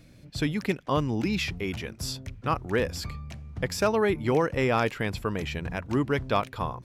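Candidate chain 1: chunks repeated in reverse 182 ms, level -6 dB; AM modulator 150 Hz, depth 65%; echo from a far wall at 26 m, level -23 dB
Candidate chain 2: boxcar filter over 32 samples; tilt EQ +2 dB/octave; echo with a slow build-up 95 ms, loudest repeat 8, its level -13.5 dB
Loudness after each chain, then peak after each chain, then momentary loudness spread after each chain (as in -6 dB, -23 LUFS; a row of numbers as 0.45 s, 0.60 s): -30.5 LUFS, -32.0 LUFS; -12.0 dBFS, -16.5 dBFS; 9 LU, 7 LU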